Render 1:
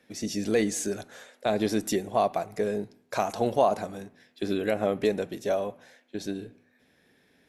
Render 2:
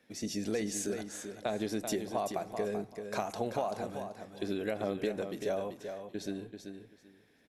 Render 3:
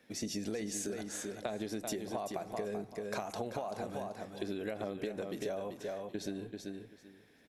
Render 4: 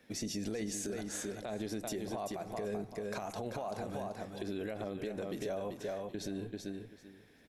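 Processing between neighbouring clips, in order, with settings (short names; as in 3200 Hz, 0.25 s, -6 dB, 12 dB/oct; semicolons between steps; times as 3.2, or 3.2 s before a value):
compressor, threshold -25 dBFS, peak gain reduction 8.5 dB; on a send: feedback echo 0.386 s, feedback 19%, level -7.5 dB; on the sum: gain -4.5 dB
compressor, threshold -37 dBFS, peak gain reduction 9.5 dB; gain +2.5 dB
low shelf 85 Hz +9 dB; limiter -30 dBFS, peak gain reduction 8.5 dB; gain +1 dB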